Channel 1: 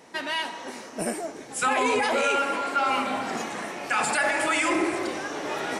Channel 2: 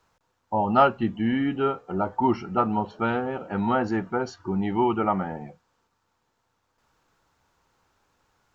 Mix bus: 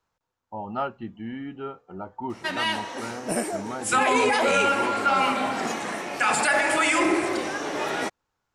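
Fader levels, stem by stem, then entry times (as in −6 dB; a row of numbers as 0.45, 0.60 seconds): +2.5, −10.5 decibels; 2.30, 0.00 seconds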